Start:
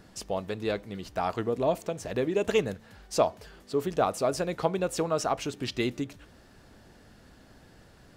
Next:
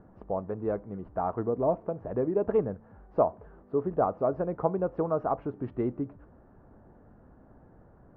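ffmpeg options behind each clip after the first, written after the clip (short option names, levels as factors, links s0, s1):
-af "lowpass=f=1200:w=0.5412,lowpass=f=1200:w=1.3066"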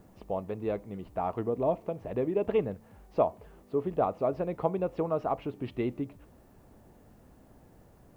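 -af "aexciter=amount=12.6:drive=3.5:freq=2300,volume=0.841"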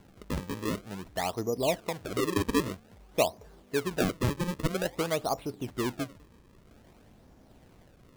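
-af "acrusher=samples=35:mix=1:aa=0.000001:lfo=1:lforange=56:lforate=0.51"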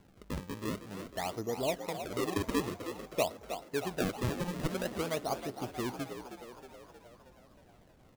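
-filter_complex "[0:a]asplit=8[s0][s1][s2][s3][s4][s5][s6][s7];[s1]adelay=315,afreqshift=59,volume=0.335[s8];[s2]adelay=630,afreqshift=118,volume=0.202[s9];[s3]adelay=945,afreqshift=177,volume=0.12[s10];[s4]adelay=1260,afreqshift=236,volume=0.0724[s11];[s5]adelay=1575,afreqshift=295,volume=0.0437[s12];[s6]adelay=1890,afreqshift=354,volume=0.026[s13];[s7]adelay=2205,afreqshift=413,volume=0.0157[s14];[s0][s8][s9][s10][s11][s12][s13][s14]amix=inputs=8:normalize=0,volume=0.562"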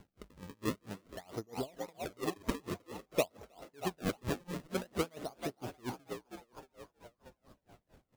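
-af "aeval=exprs='val(0)*pow(10,-31*(0.5-0.5*cos(2*PI*4.4*n/s))/20)':c=same,volume=1.5"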